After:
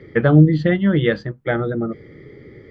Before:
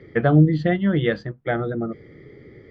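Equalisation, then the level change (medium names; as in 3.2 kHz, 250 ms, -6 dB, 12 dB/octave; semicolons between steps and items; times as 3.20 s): band-stop 700 Hz, Q 12; +3.5 dB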